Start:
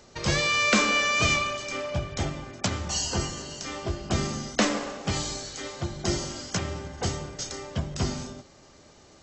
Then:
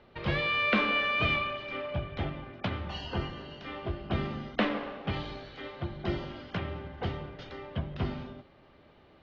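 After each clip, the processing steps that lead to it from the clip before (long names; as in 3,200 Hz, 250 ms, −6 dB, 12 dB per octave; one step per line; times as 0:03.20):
Butterworth low-pass 3,500 Hz 36 dB per octave
level −4 dB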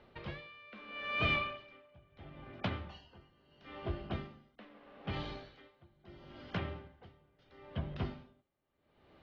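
tremolo with a sine in dB 0.76 Hz, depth 25 dB
level −3 dB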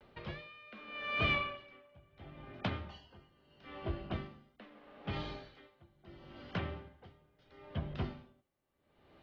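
pitch vibrato 0.44 Hz 36 cents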